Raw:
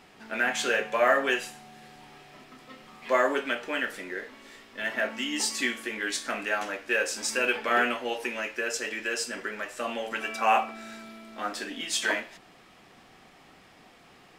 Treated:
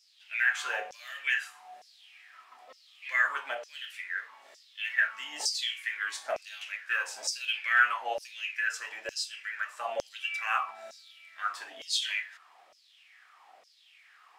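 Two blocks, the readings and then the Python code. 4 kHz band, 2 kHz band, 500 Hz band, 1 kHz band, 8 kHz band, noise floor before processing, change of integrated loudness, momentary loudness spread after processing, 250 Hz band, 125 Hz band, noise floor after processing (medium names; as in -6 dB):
-1.0 dB, -0.5 dB, -12.5 dB, -6.0 dB, -5.0 dB, -55 dBFS, -3.0 dB, 14 LU, under -25 dB, no reading, -61 dBFS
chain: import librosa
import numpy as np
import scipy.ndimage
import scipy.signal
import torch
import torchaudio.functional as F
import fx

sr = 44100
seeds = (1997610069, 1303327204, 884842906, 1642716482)

y = fx.filter_lfo_highpass(x, sr, shape='saw_down', hz=1.1, low_hz=570.0, high_hz=5600.0, q=5.8)
y = y * librosa.db_to_amplitude(-8.5)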